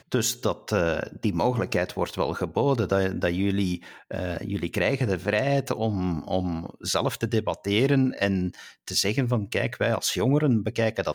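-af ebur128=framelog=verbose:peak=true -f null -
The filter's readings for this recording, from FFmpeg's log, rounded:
Integrated loudness:
  I:         -25.8 LUFS
  Threshold: -35.9 LUFS
Loudness range:
  LRA:         2.0 LU
  Threshold: -46.0 LUFS
  LRA low:   -26.9 LUFS
  LRA high:  -24.8 LUFS
True peak:
  Peak:      -10.1 dBFS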